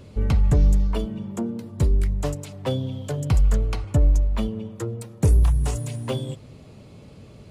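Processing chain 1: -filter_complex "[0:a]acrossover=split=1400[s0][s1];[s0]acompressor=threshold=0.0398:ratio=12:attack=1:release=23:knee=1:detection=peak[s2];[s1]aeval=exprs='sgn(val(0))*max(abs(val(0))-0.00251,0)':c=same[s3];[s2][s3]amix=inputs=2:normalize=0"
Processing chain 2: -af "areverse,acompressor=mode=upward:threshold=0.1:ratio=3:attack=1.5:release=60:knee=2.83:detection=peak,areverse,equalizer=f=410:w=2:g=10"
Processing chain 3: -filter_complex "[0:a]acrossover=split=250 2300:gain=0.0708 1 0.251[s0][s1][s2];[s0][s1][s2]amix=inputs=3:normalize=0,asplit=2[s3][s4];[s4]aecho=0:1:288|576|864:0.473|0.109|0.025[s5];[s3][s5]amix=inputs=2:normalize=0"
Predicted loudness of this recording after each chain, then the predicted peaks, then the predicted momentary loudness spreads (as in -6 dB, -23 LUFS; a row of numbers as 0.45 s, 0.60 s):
-33.5 LUFS, -22.5 LUFS, -34.5 LUFS; -18.5 dBFS, -6.0 dBFS, -16.0 dBFS; 13 LU, 11 LU, 9 LU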